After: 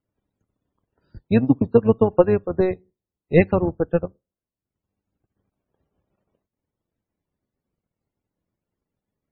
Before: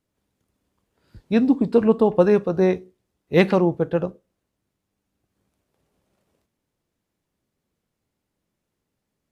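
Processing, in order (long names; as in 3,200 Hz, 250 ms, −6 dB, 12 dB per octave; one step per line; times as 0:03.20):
sub-octave generator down 1 octave, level −5 dB
transient designer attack +7 dB, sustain −11 dB
spectral peaks only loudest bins 64
level −4 dB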